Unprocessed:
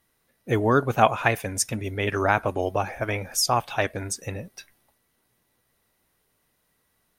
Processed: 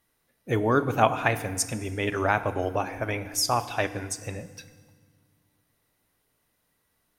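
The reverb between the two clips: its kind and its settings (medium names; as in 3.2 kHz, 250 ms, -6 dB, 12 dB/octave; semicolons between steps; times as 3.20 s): FDN reverb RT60 1.6 s, low-frequency decay 1.55×, high-frequency decay 0.85×, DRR 11.5 dB; trim -2.5 dB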